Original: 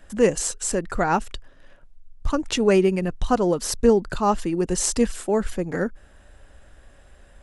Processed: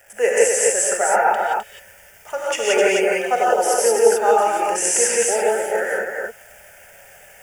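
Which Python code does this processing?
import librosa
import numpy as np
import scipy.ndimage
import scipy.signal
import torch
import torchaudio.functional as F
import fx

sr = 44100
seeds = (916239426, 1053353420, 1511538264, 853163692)

y = scipy.signal.sosfilt(scipy.signal.butter(4, 400.0, 'highpass', fs=sr, output='sos'), x)
y = fx.peak_eq(y, sr, hz=530.0, db=-4.0, octaves=0.44)
y = fx.moving_average(y, sr, points=11, at=(0.88, 1.3))
y = fx.transient(y, sr, attack_db=0, sustain_db=7, at=(4.51, 5.08))
y = fx.dmg_crackle(y, sr, seeds[0], per_s=500.0, level_db=-41.0)
y = fx.fixed_phaser(y, sr, hz=1100.0, stages=6)
y = y + 10.0 ** (-4.0 / 20.0) * np.pad(y, (int(258 * sr / 1000.0), 0))[:len(y)]
y = fx.rev_gated(y, sr, seeds[1], gate_ms=200, shape='rising', drr_db=-4.5)
y = F.gain(torch.from_numpy(y), 5.0).numpy()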